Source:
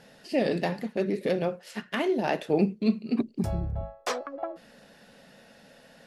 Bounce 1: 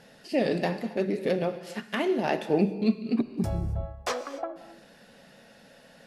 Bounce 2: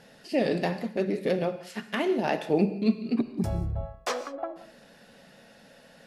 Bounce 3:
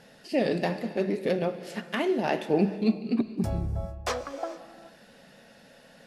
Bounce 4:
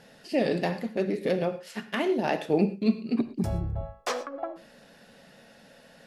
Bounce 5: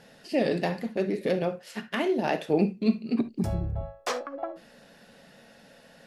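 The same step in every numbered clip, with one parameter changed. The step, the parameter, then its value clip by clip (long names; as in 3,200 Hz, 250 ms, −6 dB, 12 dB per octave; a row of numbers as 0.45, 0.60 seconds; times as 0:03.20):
reverb whose tail is shaped and stops, gate: 300, 210, 480, 140, 90 milliseconds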